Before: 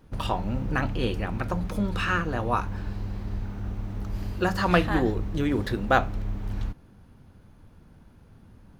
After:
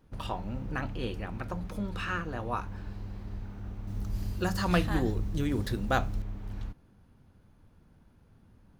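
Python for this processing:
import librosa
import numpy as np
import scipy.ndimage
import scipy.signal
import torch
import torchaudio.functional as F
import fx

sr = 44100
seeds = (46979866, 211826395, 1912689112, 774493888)

y = fx.bass_treble(x, sr, bass_db=6, treble_db=10, at=(3.87, 6.22))
y = y * librosa.db_to_amplitude(-7.5)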